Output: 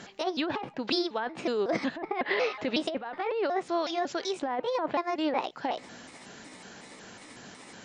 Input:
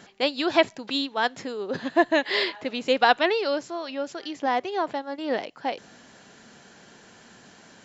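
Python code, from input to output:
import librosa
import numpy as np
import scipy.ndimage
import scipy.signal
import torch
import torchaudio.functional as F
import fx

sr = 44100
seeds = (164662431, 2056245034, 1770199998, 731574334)

y = fx.pitch_trill(x, sr, semitones=4.0, every_ms=184)
y = fx.env_lowpass_down(y, sr, base_hz=1800.0, full_db=-21.5)
y = fx.over_compress(y, sr, threshold_db=-29.0, ratio=-1.0)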